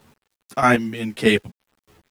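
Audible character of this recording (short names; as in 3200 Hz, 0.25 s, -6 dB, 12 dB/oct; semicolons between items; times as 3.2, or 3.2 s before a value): chopped level 1.6 Hz, depth 65%, duty 20%; a quantiser's noise floor 10-bit, dither none; a shimmering, thickened sound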